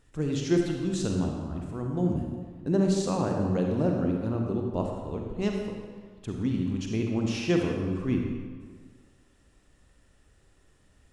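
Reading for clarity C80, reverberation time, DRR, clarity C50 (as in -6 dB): 4.0 dB, 1.6 s, 1.0 dB, 2.0 dB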